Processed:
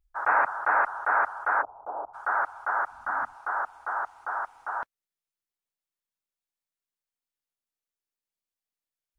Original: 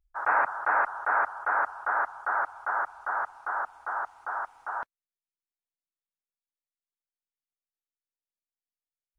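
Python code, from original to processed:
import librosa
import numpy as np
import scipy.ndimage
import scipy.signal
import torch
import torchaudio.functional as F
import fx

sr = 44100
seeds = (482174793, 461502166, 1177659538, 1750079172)

y = fx.cheby2_lowpass(x, sr, hz=2000.0, order=4, stop_db=50, at=(1.61, 2.13), fade=0.02)
y = fx.low_shelf_res(y, sr, hz=320.0, db=8.0, q=3.0, at=(2.91, 3.34))
y = F.gain(torch.from_numpy(y), 1.5).numpy()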